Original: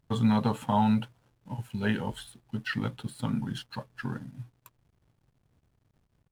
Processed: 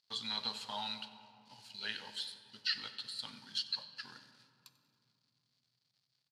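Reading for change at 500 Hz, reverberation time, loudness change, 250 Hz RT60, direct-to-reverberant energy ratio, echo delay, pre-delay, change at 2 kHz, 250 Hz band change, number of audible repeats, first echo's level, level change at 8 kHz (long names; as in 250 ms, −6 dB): −19.0 dB, 2.7 s, −9.0 dB, 4.1 s, 9.5 dB, 93 ms, 3 ms, −7.5 dB, −27.5 dB, 1, −19.0 dB, −3.5 dB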